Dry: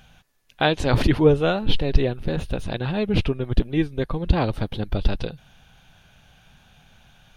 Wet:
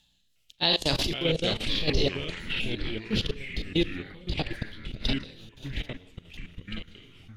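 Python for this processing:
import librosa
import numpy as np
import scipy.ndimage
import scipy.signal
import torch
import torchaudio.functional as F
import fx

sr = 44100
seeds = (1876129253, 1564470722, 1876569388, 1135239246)

p1 = fx.pitch_glide(x, sr, semitones=2.0, runs='ending unshifted')
p2 = fx.high_shelf_res(p1, sr, hz=2400.0, db=11.5, q=1.5)
p3 = p2 + fx.echo_feedback(p2, sr, ms=644, feedback_pct=41, wet_db=-20.0, dry=0)
p4 = fx.rev_schroeder(p3, sr, rt60_s=0.47, comb_ms=29, drr_db=6.0)
p5 = fx.level_steps(p4, sr, step_db=21)
p6 = fx.rotary_switch(p5, sr, hz=0.9, then_hz=5.5, switch_at_s=1.92)
p7 = fx.echo_pitch(p6, sr, ms=358, semitones=-4, count=3, db_per_echo=-6.0)
y = fx.tremolo_shape(p7, sr, shape='saw_down', hz=1.6, depth_pct=55)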